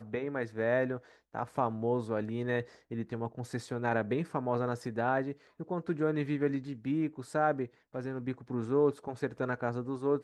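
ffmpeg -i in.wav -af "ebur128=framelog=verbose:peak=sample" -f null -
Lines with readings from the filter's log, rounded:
Integrated loudness:
  I:         -33.6 LUFS
  Threshold: -43.7 LUFS
Loudness range:
  LRA:         1.7 LU
  Threshold: -53.7 LUFS
  LRA low:   -34.6 LUFS
  LRA high:  -33.0 LUFS
Sample peak:
  Peak:      -15.5 dBFS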